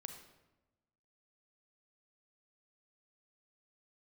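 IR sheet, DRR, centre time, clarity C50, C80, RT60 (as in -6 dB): 5.5 dB, 23 ms, 6.5 dB, 9.0 dB, 1.1 s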